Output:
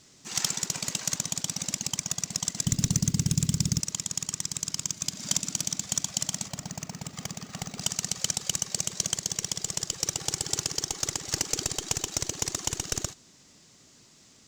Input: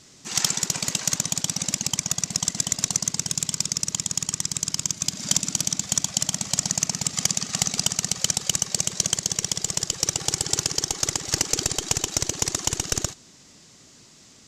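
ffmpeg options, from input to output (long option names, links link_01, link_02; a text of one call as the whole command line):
ffmpeg -i in.wav -filter_complex "[0:a]asplit=3[link_01][link_02][link_03];[link_01]afade=type=out:start_time=2.64:duration=0.02[link_04];[link_02]asubboost=boost=11.5:cutoff=250,afade=type=in:start_time=2.64:duration=0.02,afade=type=out:start_time=3.79:duration=0.02[link_05];[link_03]afade=type=in:start_time=3.79:duration=0.02[link_06];[link_04][link_05][link_06]amix=inputs=3:normalize=0,acrusher=bits=5:mode=log:mix=0:aa=0.000001,asettb=1/sr,asplit=3[link_07][link_08][link_09];[link_07]atrim=end=6.484[link_10];[link_08]atrim=start=6.48:end=7.81,asetpts=PTS-STARTPTS,afade=type=in:duration=0.004:curve=qsin,afade=type=out:start_time=1.326:duration=0.004:curve=qsin,equalizer=frequency=7300:width_type=o:width=2.7:gain=-11.5[link_11];[link_09]atrim=start=7.806[link_12];[link_10][link_11]acrossfade=duration=0.004:curve1=hsin:curve2=qsin[link_13];[link_13][link_12]acrossfade=duration=0.004:curve1=qsin:curve2=hsin,volume=-5.5dB" out.wav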